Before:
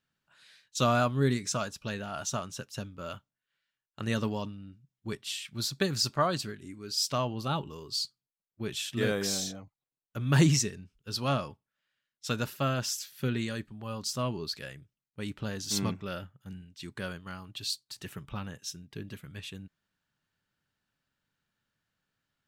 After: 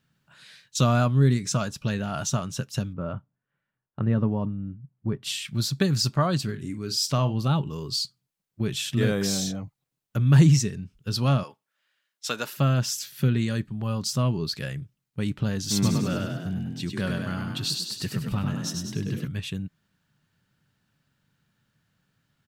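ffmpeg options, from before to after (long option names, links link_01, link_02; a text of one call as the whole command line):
ffmpeg -i in.wav -filter_complex "[0:a]asettb=1/sr,asplit=3[link_01][link_02][link_03];[link_01]atrim=end=2.934[link_04];[link_02]atrim=start=2.93:end=5.23,asetpts=PTS-STARTPTS,afade=type=in:duration=0.004:curve=qsin,afade=type=out:start_time=2.296:duration=0.004:curve=qsin,lowpass=1200[link_05];[link_03]atrim=start=5.226[link_06];[link_04][link_05]acrossfade=duration=0.004:curve1=hsin:curve2=qsin[link_07];[link_07][link_06]acrossfade=duration=0.004:curve1=qsin:curve2=hsin,asettb=1/sr,asplit=3[link_08][link_09][link_10];[link_08]atrim=end=6.444[link_11];[link_09]atrim=start=6.44:end=7.38,asetpts=PTS-STARTPTS,afade=type=in:duration=0.004:curve=qsin,afade=type=out:start_time=0.936:duration=0.004:curve=qsin,asplit=2[link_12][link_13];[link_13]adelay=46,volume=-13dB[link_14];[link_12][link_14]amix=inputs=2:normalize=0,atrim=end_sample=41454[link_15];[link_10]atrim=start=7.376[link_16];[link_11][link_15]acrossfade=duration=0.004:curve1=hsin:curve2=qsin[link_17];[link_17][link_16]acrossfade=duration=0.004:curve1=qsin:curve2=hsin,asettb=1/sr,asplit=3[link_18][link_19][link_20];[link_18]atrim=end=11.434[link_21];[link_19]atrim=start=11.43:end=12.57,asetpts=PTS-STARTPTS,afade=type=in:duration=0.004:curve=qsin,afade=type=out:start_time=1.136:duration=0.004:curve=qsin,highpass=500[link_22];[link_20]atrim=start=12.566[link_23];[link_21][link_22]acrossfade=duration=0.004:curve1=hsin:curve2=qsin[link_24];[link_24][link_23]acrossfade=duration=0.004:curve1=qsin:curve2=hsin,asplit=3[link_25][link_26][link_27];[link_25]afade=type=out:start_time=15.82:duration=0.02[link_28];[link_26]asplit=8[link_29][link_30][link_31][link_32][link_33][link_34][link_35][link_36];[link_30]adelay=99,afreqshift=34,volume=-3.5dB[link_37];[link_31]adelay=198,afreqshift=68,volume=-9.3dB[link_38];[link_32]adelay=297,afreqshift=102,volume=-15.2dB[link_39];[link_33]adelay=396,afreqshift=136,volume=-21dB[link_40];[link_34]adelay=495,afreqshift=170,volume=-26.9dB[link_41];[link_35]adelay=594,afreqshift=204,volume=-32.7dB[link_42];[link_36]adelay=693,afreqshift=238,volume=-38.6dB[link_43];[link_29][link_37][link_38][link_39][link_40][link_41][link_42][link_43]amix=inputs=8:normalize=0,afade=type=in:start_time=15.82:duration=0.02,afade=type=out:start_time=19.26:duration=0.02[link_44];[link_27]afade=type=in:start_time=19.26:duration=0.02[link_45];[link_28][link_44][link_45]amix=inputs=3:normalize=0,equalizer=frequency=140:width=0.9:gain=10,acompressor=threshold=-39dB:ratio=1.5,volume=8dB" out.wav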